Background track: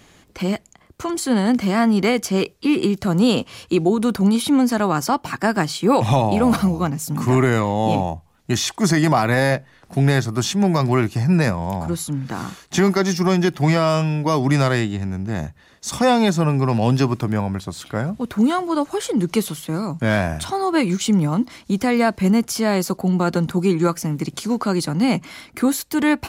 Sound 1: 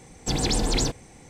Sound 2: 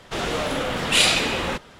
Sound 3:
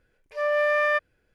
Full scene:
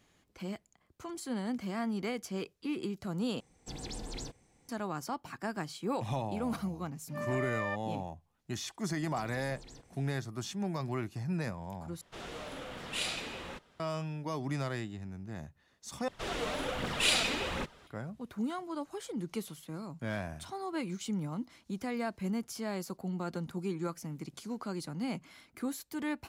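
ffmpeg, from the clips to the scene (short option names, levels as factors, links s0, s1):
-filter_complex "[1:a]asplit=2[s0][s1];[2:a]asplit=2[s2][s3];[0:a]volume=0.126[s4];[s1]acompressor=threshold=0.0224:ratio=6:attack=3.2:release=140:knee=1:detection=peak[s5];[s3]aphaser=in_gain=1:out_gain=1:delay=4.7:decay=0.4:speed=1.3:type=triangular[s6];[s4]asplit=4[s7][s8][s9][s10];[s7]atrim=end=3.404[s11];[s0]atrim=end=1.29,asetpts=PTS-STARTPTS,volume=0.126[s12];[s8]atrim=start=4.686:end=12.014[s13];[s2]atrim=end=1.79,asetpts=PTS-STARTPTS,volume=0.126[s14];[s9]atrim=start=13.796:end=16.084[s15];[s6]atrim=end=1.79,asetpts=PTS-STARTPTS,volume=0.282[s16];[s10]atrim=start=17.866[s17];[3:a]atrim=end=1.34,asetpts=PTS-STARTPTS,volume=0.2,afade=t=in:d=0.004:c=hsin,afade=t=out:st=1.336:d=0.004:c=hsin,adelay=6770[s18];[s5]atrim=end=1.29,asetpts=PTS-STARTPTS,volume=0.158,afade=t=in:d=0.004:c=hsin,afade=t=out:st=1.286:d=0.004:c=hsin,adelay=392490S[s19];[s11][s12]acrossfade=d=0.004:c1=hsin:c2=hsin[s20];[s20][s13]acrossfade=d=0.004:c1=hsin:c2=hsin[s21];[s21][s14]acrossfade=d=0.004:c1=hsin:c2=hsin[s22];[s22][s15]acrossfade=d=0.004:c1=hsin:c2=hsin[s23];[s23][s16]acrossfade=d=0.004:c1=hsin:c2=hsin[s24];[s24][s17]acrossfade=d=0.004:c1=hsin:c2=hsin[s25];[s25][s18][s19]amix=inputs=3:normalize=0"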